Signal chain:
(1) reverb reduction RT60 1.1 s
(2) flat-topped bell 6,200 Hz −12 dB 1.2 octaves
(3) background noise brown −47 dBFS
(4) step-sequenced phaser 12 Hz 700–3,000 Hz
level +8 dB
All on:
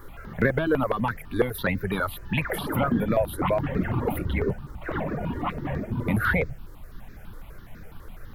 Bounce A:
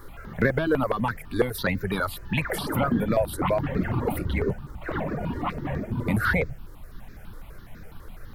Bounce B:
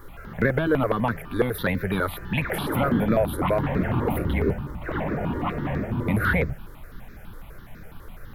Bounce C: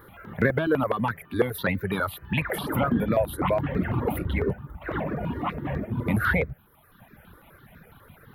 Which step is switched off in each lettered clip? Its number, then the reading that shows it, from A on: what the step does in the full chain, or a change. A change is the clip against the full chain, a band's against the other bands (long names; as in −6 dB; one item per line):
2, 8 kHz band +3.0 dB
1, change in momentary loudness spread −2 LU
3, change in momentary loudness spread −1 LU